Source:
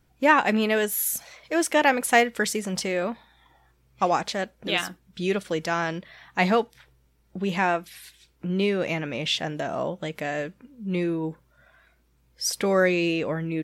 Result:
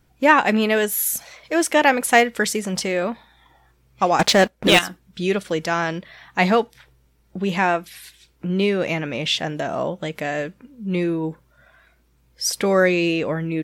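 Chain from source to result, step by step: 4.19–4.79 sample leveller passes 3; gain +4 dB

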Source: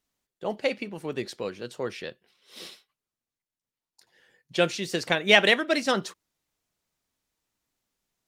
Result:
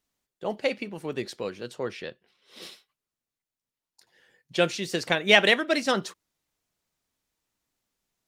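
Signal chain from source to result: 1.73–2.61 high shelf 9700 Hz -> 5000 Hz -9 dB

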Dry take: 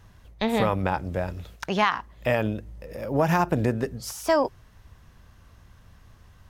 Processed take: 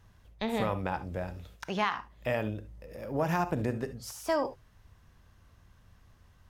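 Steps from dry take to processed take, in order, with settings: non-linear reverb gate 90 ms rising, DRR 11.5 dB; gain -7.5 dB

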